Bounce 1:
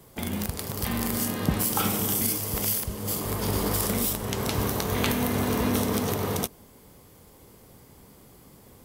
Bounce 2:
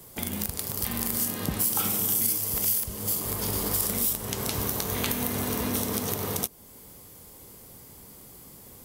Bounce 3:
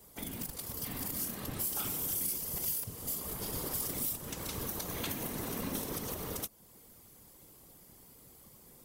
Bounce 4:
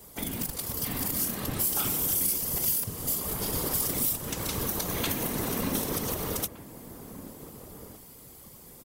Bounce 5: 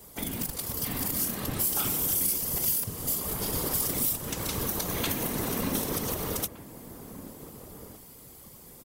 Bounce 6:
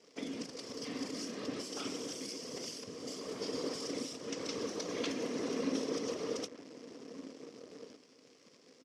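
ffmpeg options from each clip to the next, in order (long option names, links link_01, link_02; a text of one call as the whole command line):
ffmpeg -i in.wav -af "highshelf=frequency=4700:gain=10,acompressor=threshold=-34dB:ratio=1.5" out.wav
ffmpeg -i in.wav -af "aeval=exprs='clip(val(0),-1,0.2)':channel_layout=same,afftfilt=real='hypot(re,im)*cos(2*PI*random(0))':imag='hypot(re,im)*sin(2*PI*random(1))':win_size=512:overlap=0.75,volume=-3dB" out.wav
ffmpeg -i in.wav -filter_complex "[0:a]asplit=2[link_01][link_02];[link_02]adelay=1516,volume=-13dB,highshelf=frequency=4000:gain=-34.1[link_03];[link_01][link_03]amix=inputs=2:normalize=0,volume=7.5dB" out.wav
ffmpeg -i in.wav -af anull out.wav
ffmpeg -i in.wav -af "acrusher=bits=8:dc=4:mix=0:aa=0.000001,highpass=260,equalizer=frequency=270:width_type=q:width=4:gain=9,equalizer=frequency=470:width_type=q:width=4:gain=9,equalizer=frequency=850:width_type=q:width=4:gain=-8,equalizer=frequency=1500:width_type=q:width=4:gain=-4,equalizer=frequency=3800:width_type=q:width=4:gain=-4,equalizer=frequency=5400:width_type=q:width=4:gain=7,lowpass=frequency=5900:width=0.5412,lowpass=frequency=5900:width=1.3066,volume=-6.5dB" out.wav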